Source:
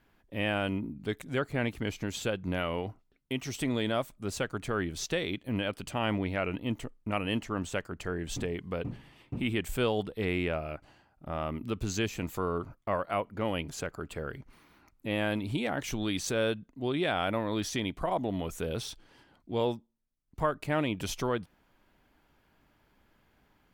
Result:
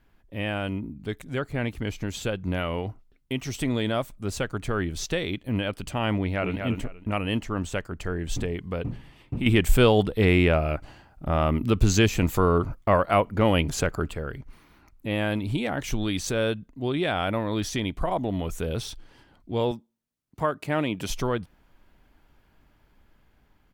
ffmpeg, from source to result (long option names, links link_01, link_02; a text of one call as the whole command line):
ffmpeg -i in.wav -filter_complex "[0:a]asplit=2[link_01][link_02];[link_02]afade=type=in:start_time=6.18:duration=0.01,afade=type=out:start_time=6.6:duration=0.01,aecho=0:1:240|480|720:0.530884|0.106177|0.0212354[link_03];[link_01][link_03]amix=inputs=2:normalize=0,asettb=1/sr,asplit=3[link_04][link_05][link_06];[link_04]atrim=end=9.464[link_07];[link_05]atrim=start=9.46:end=14.11,asetpts=PTS-STARTPTS,afade=type=in:duration=0.004:curve=qsin,afade=type=out:start_time=4.646:duration=0.004:curve=qsin,acontrast=79[link_08];[link_06]atrim=start=14.106[link_09];[link_07][link_08]acrossfade=duration=0.004:curve1=hsin:curve2=qsin[link_10];[link_10][link_09]acrossfade=duration=0.004:curve1=qsin:curve2=hsin,asettb=1/sr,asplit=3[link_11][link_12][link_13];[link_11]atrim=end=19.714[link_14];[link_12]atrim=start=19.71:end=21.1,asetpts=PTS-STARTPTS,afade=type=in:duration=0.004:curve=qsin,afade=type=out:start_time=1.386:duration=0.004:curve=qsin,highpass=140[link_15];[link_13]atrim=start=21.096[link_16];[link_14][link_15]acrossfade=duration=0.004:curve1=hsin:curve2=qsin[link_17];[link_17][link_16]acrossfade=duration=0.004:curve1=qsin:curve2=hsin,lowshelf=frequency=81:gain=11.5,dynaudnorm=framelen=370:gausssize=11:maxgain=3dB" out.wav